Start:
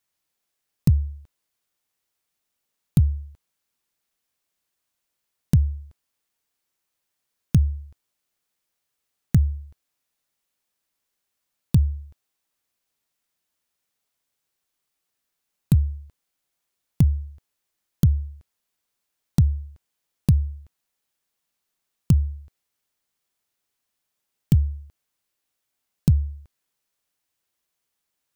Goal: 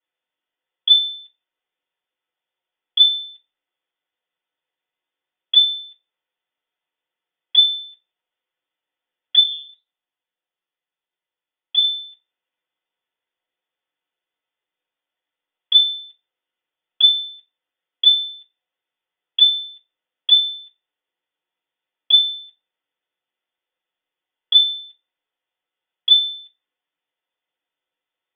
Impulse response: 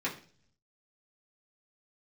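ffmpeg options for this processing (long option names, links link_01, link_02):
-filter_complex "[0:a]lowpass=frequency=3100:width_type=q:width=0.5098,lowpass=frequency=3100:width_type=q:width=0.6013,lowpass=frequency=3100:width_type=q:width=0.9,lowpass=frequency=3100:width_type=q:width=2.563,afreqshift=-3600,asplit=3[link_01][link_02][link_03];[link_01]afade=type=out:start_time=9.39:duration=0.02[link_04];[link_02]flanger=delay=4.8:depth=8.6:regen=-45:speed=1.7:shape=sinusoidal,afade=type=in:start_time=9.39:duration=0.02,afade=type=out:start_time=11.82:duration=0.02[link_05];[link_03]afade=type=in:start_time=11.82:duration=0.02[link_06];[link_04][link_05][link_06]amix=inputs=3:normalize=0[link_07];[1:a]atrim=start_sample=2205,asetrate=79380,aresample=44100[link_08];[link_07][link_08]afir=irnorm=-1:irlink=0"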